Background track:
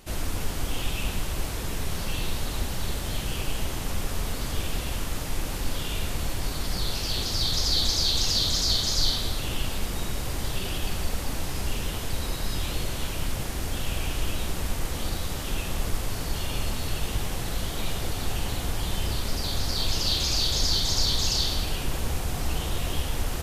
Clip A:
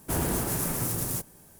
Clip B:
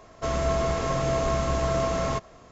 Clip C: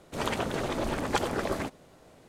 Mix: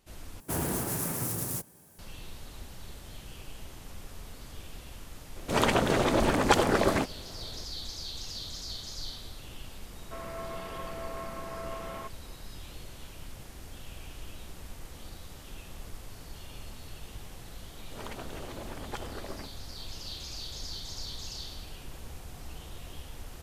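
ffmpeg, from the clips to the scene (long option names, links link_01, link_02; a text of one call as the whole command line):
ffmpeg -i bed.wav -i cue0.wav -i cue1.wav -i cue2.wav -filter_complex "[3:a]asplit=2[link_01][link_02];[0:a]volume=-15.5dB[link_03];[1:a]highpass=68[link_04];[link_01]acontrast=85[link_05];[2:a]highpass=frequency=190:width=0.5412,highpass=frequency=190:width=1.3066,equalizer=frequency=270:width_type=q:width=4:gain=-7,equalizer=frequency=450:width_type=q:width=4:gain=-3,equalizer=frequency=660:width_type=q:width=4:gain=-4,lowpass=frequency=2700:width=0.5412,lowpass=frequency=2700:width=1.3066[link_06];[link_03]asplit=2[link_07][link_08];[link_07]atrim=end=0.404[link_09];[link_04]atrim=end=1.59,asetpts=PTS-STARTPTS,volume=-3dB[link_10];[link_08]atrim=start=1.986[link_11];[link_05]atrim=end=2.28,asetpts=PTS-STARTPTS,volume=-1.5dB,afade=type=in:duration=0.004:curve=hsin,afade=type=out:start_time=2.276:duration=0.004:curve=hsin,adelay=5360[link_12];[link_06]atrim=end=2.51,asetpts=PTS-STARTPTS,volume=-10.5dB,afade=type=in:duration=0.004:curve=hsin,afade=type=out:start_time=2.506:duration=0.004:curve=hsin,adelay=9890[link_13];[link_02]atrim=end=2.28,asetpts=PTS-STARTPTS,volume=-12dB,afade=type=in:duration=0.004:curve=hsin,afade=type=out:start_time=2.276:duration=0.004:curve=hsin,adelay=17790[link_14];[link_09][link_10]acrossfade=duration=0.004:curve1=hsin:curve2=hsin[link_15];[link_15][link_11]acrossfade=duration=0.004:curve1=hsin:curve2=hsin[link_16];[link_16][link_12][link_13][link_14]amix=inputs=4:normalize=0" out.wav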